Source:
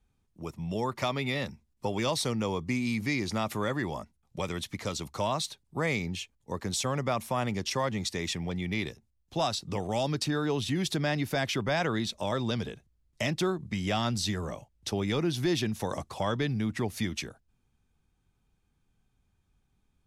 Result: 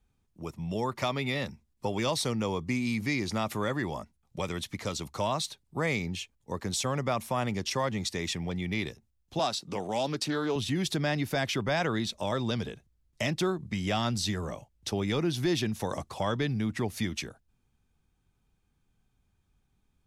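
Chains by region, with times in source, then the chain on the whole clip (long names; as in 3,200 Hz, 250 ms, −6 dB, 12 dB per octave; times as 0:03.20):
0:09.39–0:10.56: high-pass filter 180 Hz + highs frequency-modulated by the lows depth 0.15 ms
whole clip: no processing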